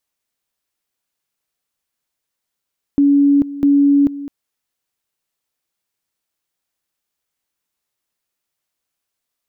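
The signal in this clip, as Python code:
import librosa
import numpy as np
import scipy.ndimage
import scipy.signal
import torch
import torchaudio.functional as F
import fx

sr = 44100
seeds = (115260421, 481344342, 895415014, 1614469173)

y = fx.two_level_tone(sr, hz=283.0, level_db=-8.5, drop_db=16.0, high_s=0.44, low_s=0.21, rounds=2)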